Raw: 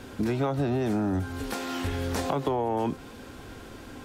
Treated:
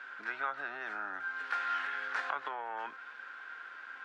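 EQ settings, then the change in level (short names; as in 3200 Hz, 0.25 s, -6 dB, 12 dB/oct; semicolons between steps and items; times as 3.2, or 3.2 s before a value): resonant high-pass 1500 Hz, resonance Q 4.6; tape spacing loss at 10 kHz 27 dB; high shelf 5500 Hz -5.5 dB; 0.0 dB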